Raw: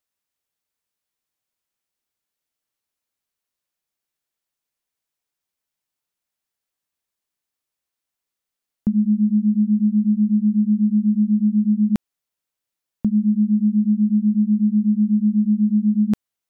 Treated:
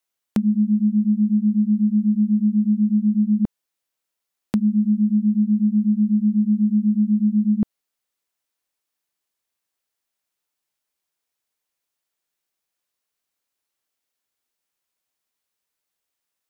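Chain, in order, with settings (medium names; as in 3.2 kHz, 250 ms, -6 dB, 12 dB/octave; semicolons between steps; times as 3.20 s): reverse the whole clip; tone controls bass -5 dB, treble 0 dB; trim +2.5 dB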